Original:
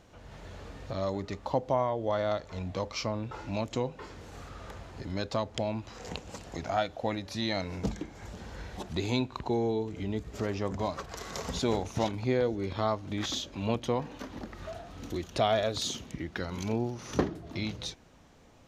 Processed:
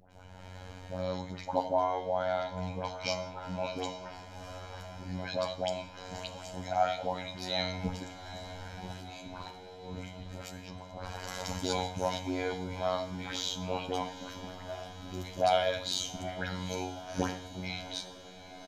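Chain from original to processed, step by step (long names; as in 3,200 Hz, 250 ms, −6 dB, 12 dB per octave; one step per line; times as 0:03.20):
parametric band 110 Hz −13 dB 0.4 octaves
comb filter 1.3 ms, depth 57%
0:08.77–0:11.31: compressor whose output falls as the input rises −43 dBFS, ratio −1
all-pass dispersion highs, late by 114 ms, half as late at 1,300 Hz
phases set to zero 91.9 Hz
feedback delay with all-pass diffusion 792 ms, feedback 71%, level −15 dB
reverb whose tail is shaped and stops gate 220 ms falling, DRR 7.5 dB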